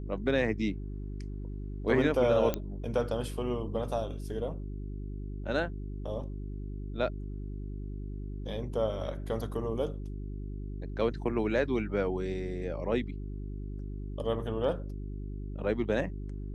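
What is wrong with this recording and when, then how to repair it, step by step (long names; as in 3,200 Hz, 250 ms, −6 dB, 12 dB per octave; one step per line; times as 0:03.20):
mains hum 50 Hz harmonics 8 −38 dBFS
0:02.54: click −16 dBFS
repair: click removal
hum removal 50 Hz, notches 8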